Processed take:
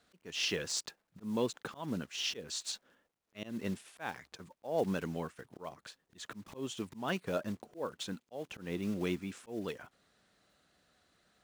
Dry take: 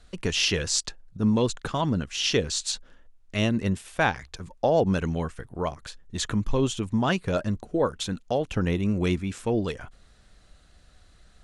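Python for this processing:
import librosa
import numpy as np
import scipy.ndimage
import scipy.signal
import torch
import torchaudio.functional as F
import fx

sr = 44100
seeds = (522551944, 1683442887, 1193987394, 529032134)

y = fx.block_float(x, sr, bits=5)
y = scipy.signal.sosfilt(scipy.signal.butter(2, 190.0, 'highpass', fs=sr, output='sos'), y)
y = fx.high_shelf(y, sr, hz=4400.0, db=-4.5)
y = fx.auto_swell(y, sr, attack_ms=197.0)
y = y * 10.0 ** (-7.5 / 20.0)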